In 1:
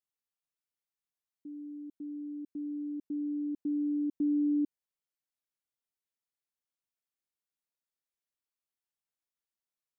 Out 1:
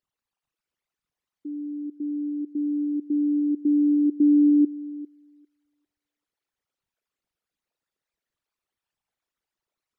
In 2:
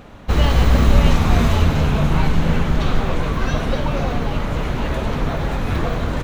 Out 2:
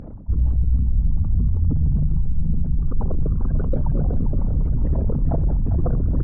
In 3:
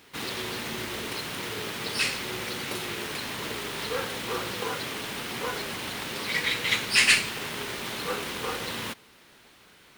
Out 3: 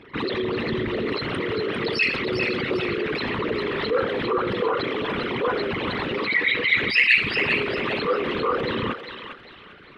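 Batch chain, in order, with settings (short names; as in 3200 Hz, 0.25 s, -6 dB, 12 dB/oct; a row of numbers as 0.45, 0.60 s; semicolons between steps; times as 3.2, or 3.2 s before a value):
formant sharpening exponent 3; LPF 2400 Hz 6 dB/oct; reverse; compressor, threshold -22 dBFS; reverse; thinning echo 0.4 s, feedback 37%, high-pass 1100 Hz, level -5.5 dB; match loudness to -23 LUFS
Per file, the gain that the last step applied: +11.0, +7.0, +8.5 dB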